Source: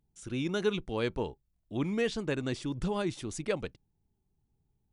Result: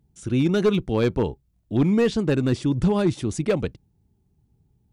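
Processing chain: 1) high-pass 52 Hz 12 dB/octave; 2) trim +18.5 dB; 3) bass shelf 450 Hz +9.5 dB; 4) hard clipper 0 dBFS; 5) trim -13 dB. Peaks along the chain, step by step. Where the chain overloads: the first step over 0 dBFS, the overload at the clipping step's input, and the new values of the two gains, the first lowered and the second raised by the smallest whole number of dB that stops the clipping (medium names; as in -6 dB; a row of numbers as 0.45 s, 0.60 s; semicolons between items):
-16.5 dBFS, +2.0 dBFS, +6.0 dBFS, 0.0 dBFS, -13.0 dBFS; step 2, 6.0 dB; step 2 +12.5 dB, step 5 -7 dB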